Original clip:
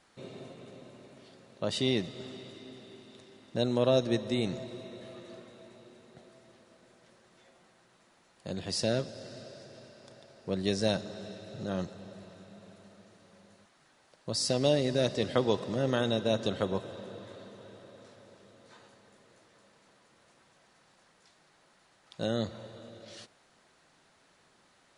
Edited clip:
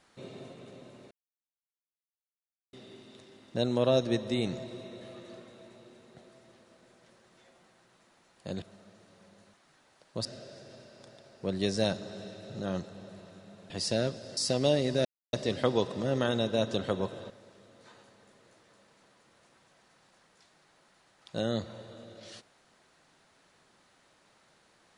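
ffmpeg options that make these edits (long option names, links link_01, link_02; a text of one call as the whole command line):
ffmpeg -i in.wav -filter_complex "[0:a]asplit=9[link_01][link_02][link_03][link_04][link_05][link_06][link_07][link_08][link_09];[link_01]atrim=end=1.11,asetpts=PTS-STARTPTS,afade=type=out:start_time=1.106:duration=0.004:curve=hsin[link_10];[link_02]atrim=start=1.11:end=2.73,asetpts=PTS-STARTPTS,volume=0[link_11];[link_03]atrim=start=2.73:end=8.622,asetpts=PTS-STARTPTS,afade=type=in:duration=0.004:curve=hsin[link_12];[link_04]atrim=start=12.738:end=14.372[link_13];[link_05]atrim=start=9.288:end=12.742[link_14];[link_06]atrim=start=8.618:end=9.292[link_15];[link_07]atrim=start=14.368:end=15.05,asetpts=PTS-STARTPTS,afade=type=out:start_time=0.678:duration=0.004:curve=hsin,apad=pad_dur=0.28[link_16];[link_08]atrim=start=15.05:end=17.022,asetpts=PTS-STARTPTS,afade=type=in:duration=0.004:curve=hsin[link_17];[link_09]atrim=start=18.148[link_18];[link_10][link_11][link_12]concat=n=3:v=0:a=1[link_19];[link_19][link_13]acrossfade=duration=0.004:curve1=hsin:curve2=hsin[link_20];[link_20][link_14]acrossfade=duration=0.004:curve1=hsin:curve2=hsin[link_21];[link_21][link_15]acrossfade=duration=0.004:curve1=hsin:curve2=hsin[link_22];[link_16][link_17]concat=n=2:v=0:a=1[link_23];[link_22][link_23]acrossfade=duration=0.004:curve1=hsin:curve2=hsin[link_24];[link_24][link_18]acrossfade=duration=0.004:curve1=hsin:curve2=hsin" out.wav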